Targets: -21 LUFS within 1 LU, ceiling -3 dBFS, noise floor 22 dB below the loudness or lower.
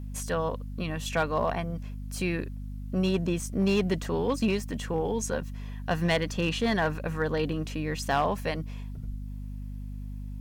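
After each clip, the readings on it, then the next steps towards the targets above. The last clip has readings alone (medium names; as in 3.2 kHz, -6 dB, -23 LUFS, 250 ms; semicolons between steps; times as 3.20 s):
clipped samples 0.4%; clipping level -18.0 dBFS; hum 50 Hz; highest harmonic 250 Hz; hum level -35 dBFS; loudness -29.5 LUFS; peak level -18.0 dBFS; loudness target -21.0 LUFS
-> clip repair -18 dBFS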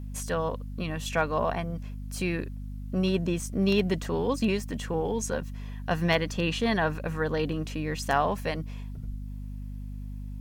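clipped samples 0.0%; hum 50 Hz; highest harmonic 250 Hz; hum level -35 dBFS
-> hum notches 50/100/150/200/250 Hz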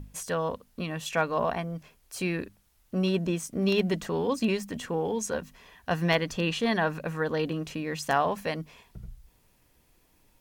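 hum not found; loudness -29.5 LUFS; peak level -10.5 dBFS; loudness target -21.0 LUFS
-> trim +8.5 dB; peak limiter -3 dBFS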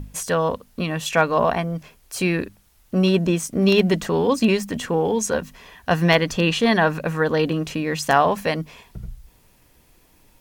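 loudness -21.0 LUFS; peak level -3.0 dBFS; noise floor -57 dBFS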